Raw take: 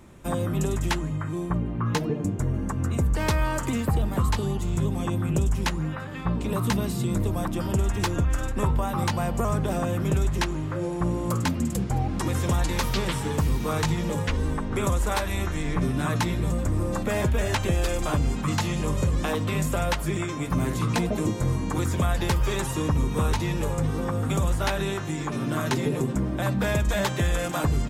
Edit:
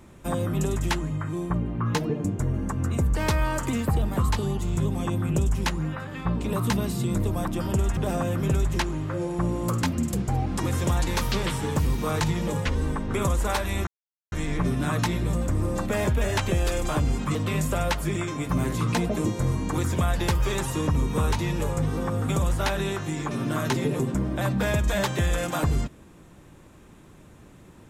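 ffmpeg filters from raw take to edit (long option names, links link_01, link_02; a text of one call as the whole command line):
ffmpeg -i in.wav -filter_complex "[0:a]asplit=4[link_01][link_02][link_03][link_04];[link_01]atrim=end=7.972[link_05];[link_02]atrim=start=9.588:end=15.49,asetpts=PTS-STARTPTS,afade=type=out:start_time=5.898:duration=0.004:curve=hsin,apad=pad_dur=0.45[link_06];[link_03]atrim=start=15.49:end=18.522,asetpts=PTS-STARTPTS,afade=type=in:duration=0.004:curve=hsin[link_07];[link_04]atrim=start=19.358[link_08];[link_06][link_07]concat=n=2:v=0:a=1[link_09];[link_05][link_09]acrossfade=duration=0.004:curve1=hsin:curve2=hsin[link_10];[link_10][link_08]acrossfade=duration=0.004:curve1=hsin:curve2=hsin" out.wav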